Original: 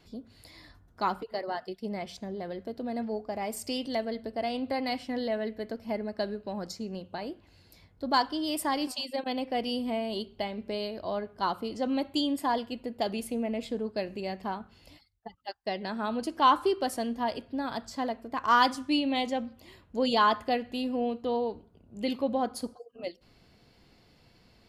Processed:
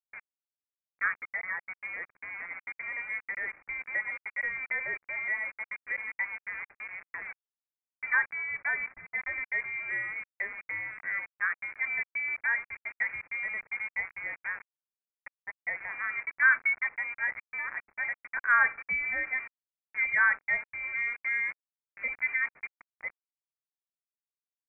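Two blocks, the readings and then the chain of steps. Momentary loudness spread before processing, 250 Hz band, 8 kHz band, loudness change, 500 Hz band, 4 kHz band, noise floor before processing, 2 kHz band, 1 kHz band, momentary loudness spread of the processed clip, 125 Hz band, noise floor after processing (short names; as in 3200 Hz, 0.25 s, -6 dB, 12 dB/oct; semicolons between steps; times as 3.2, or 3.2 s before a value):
13 LU, under -30 dB, under -35 dB, +0.5 dB, -21.5 dB, under -30 dB, -62 dBFS, +12.5 dB, -10.0 dB, 14 LU, under -15 dB, under -85 dBFS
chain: sample gate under -36 dBFS; three-band isolator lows -17 dB, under 270 Hz, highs -17 dB, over 2000 Hz; inverted band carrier 2600 Hz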